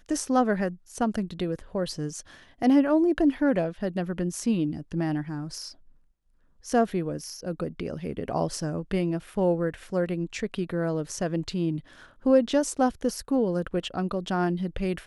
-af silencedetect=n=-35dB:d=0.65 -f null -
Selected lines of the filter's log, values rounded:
silence_start: 5.69
silence_end: 6.66 | silence_duration: 0.97